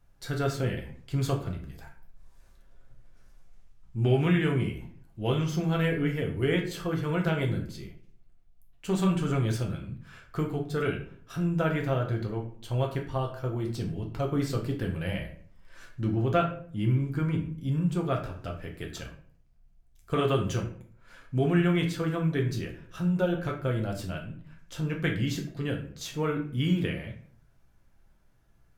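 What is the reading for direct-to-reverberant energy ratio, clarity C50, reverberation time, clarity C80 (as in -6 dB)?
0.5 dB, 8.5 dB, 0.55 s, 12.0 dB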